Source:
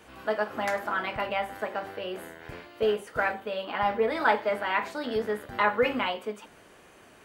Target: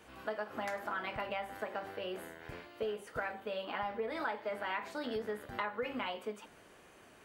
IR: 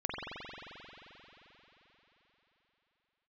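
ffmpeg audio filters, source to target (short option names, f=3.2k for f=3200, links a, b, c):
-af "acompressor=threshold=-29dB:ratio=6,volume=-5dB"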